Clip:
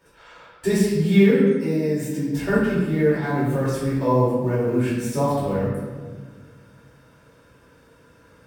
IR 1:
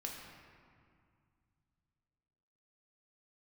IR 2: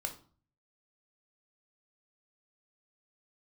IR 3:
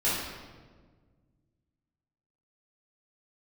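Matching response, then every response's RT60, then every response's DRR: 3; 2.2, 0.45, 1.5 s; -1.0, 3.5, -10.5 dB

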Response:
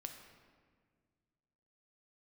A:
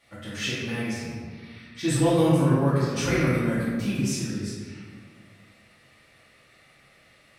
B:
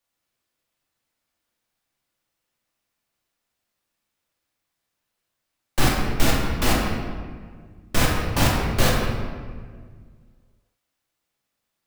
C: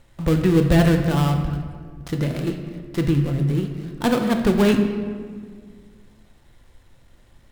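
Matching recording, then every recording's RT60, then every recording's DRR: C; 1.7, 1.7, 1.8 s; -10.0, -3.5, 4.0 dB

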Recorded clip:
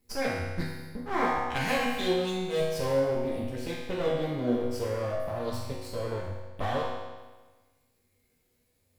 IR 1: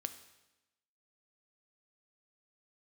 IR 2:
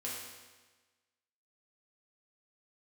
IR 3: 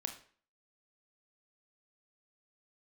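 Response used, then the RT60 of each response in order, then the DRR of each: 2; 1.0, 1.3, 0.45 s; 9.0, -6.0, 5.0 dB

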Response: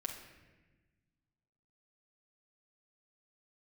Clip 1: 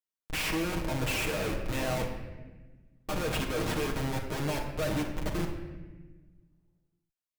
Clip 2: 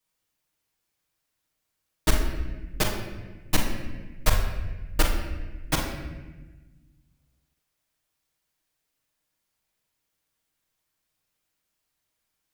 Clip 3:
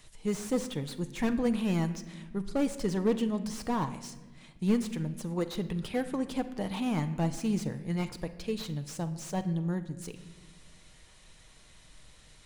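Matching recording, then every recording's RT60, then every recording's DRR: 1; 1.2, 1.2, 1.4 s; -0.5, -6.5, 8.0 dB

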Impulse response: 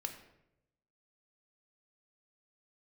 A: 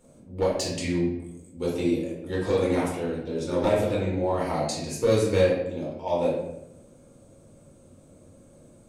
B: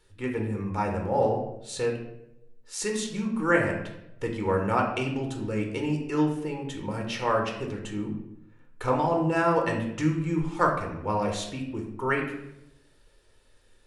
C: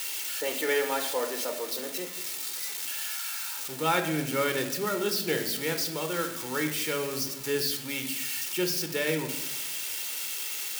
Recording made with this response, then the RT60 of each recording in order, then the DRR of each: C; 0.85, 0.85, 0.85 s; -6.0, 1.0, 5.5 dB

